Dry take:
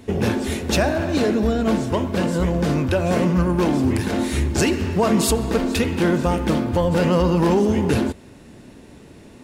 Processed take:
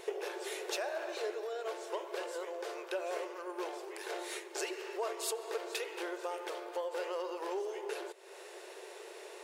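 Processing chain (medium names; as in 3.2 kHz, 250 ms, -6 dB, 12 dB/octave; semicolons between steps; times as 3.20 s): compression 6:1, threshold -34 dBFS, peak gain reduction 19 dB; brick-wall FIR high-pass 350 Hz; trim +1 dB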